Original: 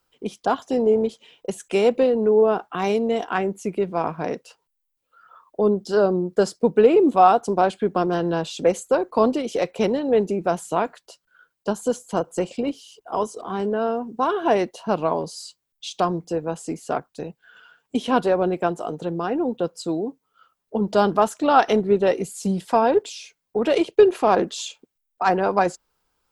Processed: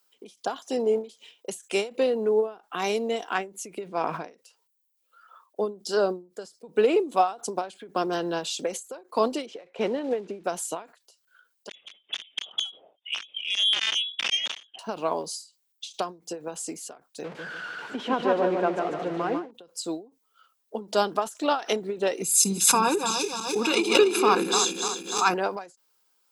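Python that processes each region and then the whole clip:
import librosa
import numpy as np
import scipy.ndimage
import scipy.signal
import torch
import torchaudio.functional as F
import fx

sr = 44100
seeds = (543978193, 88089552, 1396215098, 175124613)

y = fx.chain(x, sr, fx.high_shelf(hz=9300.0, db=-10.0),
    fx.sustainer(db_per_s=25.0), at=(3.88, 4.3))
y = fx.chain(y, sr, fx.block_float(bits=5),
    fx.lowpass(hz=2300.0, slope=12), at=(9.46, 10.44))
y = fx.chain(y, sr, fx.overflow_wrap(gain_db=15.0),
    fx.freq_invert(carrier_hz=3600),
    fx.transformer_sat(knee_hz=2000.0), at=(11.69, 14.79))
y = fx.chain(y, sr, fx.zero_step(step_db=-28.5),
    fx.lowpass(hz=1900.0, slope=12),
    fx.echo_feedback(ms=147, feedback_pct=40, wet_db=-4.0), at=(17.24, 19.51))
y = fx.chain(y, sr, fx.reverse_delay_fb(ms=148, feedback_pct=71, wet_db=-7),
    fx.comb(ms=0.8, depth=0.9),
    fx.pre_swell(db_per_s=95.0), at=(22.22, 25.34))
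y = scipy.signal.sosfilt(scipy.signal.butter(2, 240.0, 'highpass', fs=sr, output='sos'), y)
y = fx.high_shelf(y, sr, hz=2800.0, db=12.0)
y = fx.end_taper(y, sr, db_per_s=180.0)
y = F.gain(torch.from_numpy(y), -5.0).numpy()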